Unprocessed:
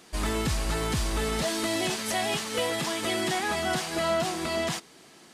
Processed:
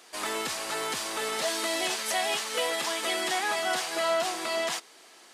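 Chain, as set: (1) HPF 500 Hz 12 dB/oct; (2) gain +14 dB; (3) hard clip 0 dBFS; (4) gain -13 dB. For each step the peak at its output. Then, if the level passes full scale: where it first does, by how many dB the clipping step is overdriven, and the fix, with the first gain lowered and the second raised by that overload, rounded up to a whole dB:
-17.0, -3.0, -3.0, -16.0 dBFS; no overload

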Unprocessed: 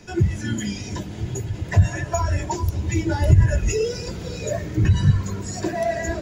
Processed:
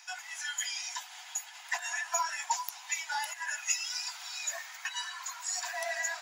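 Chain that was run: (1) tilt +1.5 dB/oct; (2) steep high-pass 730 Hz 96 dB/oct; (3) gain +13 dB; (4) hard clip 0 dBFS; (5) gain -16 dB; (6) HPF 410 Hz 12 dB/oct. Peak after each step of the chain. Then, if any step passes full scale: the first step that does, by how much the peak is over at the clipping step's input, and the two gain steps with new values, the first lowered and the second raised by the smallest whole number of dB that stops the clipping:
-7.0, -8.5, +4.5, 0.0, -16.0, -15.0 dBFS; step 3, 4.5 dB; step 3 +8 dB, step 5 -11 dB

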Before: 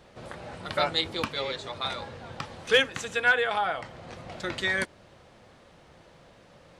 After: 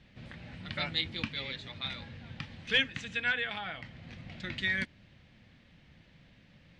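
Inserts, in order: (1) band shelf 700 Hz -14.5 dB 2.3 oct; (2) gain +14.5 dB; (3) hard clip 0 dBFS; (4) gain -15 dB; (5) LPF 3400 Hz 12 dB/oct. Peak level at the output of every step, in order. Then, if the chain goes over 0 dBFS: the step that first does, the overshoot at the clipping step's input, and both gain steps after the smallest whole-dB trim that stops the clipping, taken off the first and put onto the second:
-11.0, +3.5, 0.0, -15.0, -15.0 dBFS; step 2, 3.5 dB; step 2 +10.5 dB, step 4 -11 dB

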